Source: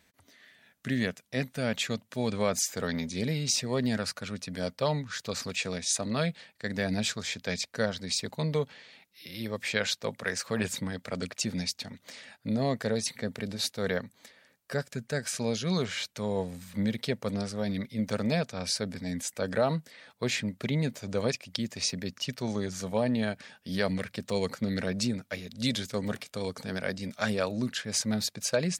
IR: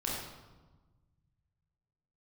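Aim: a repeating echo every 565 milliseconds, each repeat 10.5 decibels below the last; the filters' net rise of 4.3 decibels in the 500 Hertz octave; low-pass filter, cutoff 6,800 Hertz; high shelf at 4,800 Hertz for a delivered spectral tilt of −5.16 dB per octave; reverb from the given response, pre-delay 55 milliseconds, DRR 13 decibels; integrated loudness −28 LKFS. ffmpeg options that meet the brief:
-filter_complex "[0:a]lowpass=6800,equalizer=frequency=500:width_type=o:gain=5,highshelf=frequency=4800:gain=-4,aecho=1:1:565|1130|1695:0.299|0.0896|0.0269,asplit=2[link_01][link_02];[1:a]atrim=start_sample=2205,adelay=55[link_03];[link_02][link_03]afir=irnorm=-1:irlink=0,volume=-17.5dB[link_04];[link_01][link_04]amix=inputs=2:normalize=0,volume=2dB"

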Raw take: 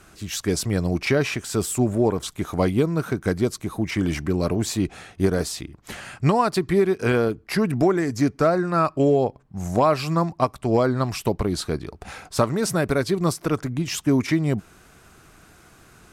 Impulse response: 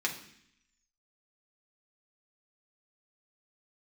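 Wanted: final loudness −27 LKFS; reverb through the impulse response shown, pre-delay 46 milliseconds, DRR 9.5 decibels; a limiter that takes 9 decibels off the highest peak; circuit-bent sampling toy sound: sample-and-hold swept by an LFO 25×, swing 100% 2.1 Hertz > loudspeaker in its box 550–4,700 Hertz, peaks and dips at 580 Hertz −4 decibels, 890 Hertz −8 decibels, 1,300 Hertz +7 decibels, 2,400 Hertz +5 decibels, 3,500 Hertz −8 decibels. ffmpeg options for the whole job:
-filter_complex "[0:a]alimiter=limit=-15dB:level=0:latency=1,asplit=2[link_01][link_02];[1:a]atrim=start_sample=2205,adelay=46[link_03];[link_02][link_03]afir=irnorm=-1:irlink=0,volume=-16dB[link_04];[link_01][link_04]amix=inputs=2:normalize=0,acrusher=samples=25:mix=1:aa=0.000001:lfo=1:lforange=25:lforate=2.1,highpass=550,equalizer=frequency=580:width_type=q:width=4:gain=-4,equalizer=frequency=890:width_type=q:width=4:gain=-8,equalizer=frequency=1300:width_type=q:width=4:gain=7,equalizer=frequency=2400:width_type=q:width=4:gain=5,equalizer=frequency=3500:width_type=q:width=4:gain=-8,lowpass=frequency=4700:width=0.5412,lowpass=frequency=4700:width=1.3066,volume=4dB"

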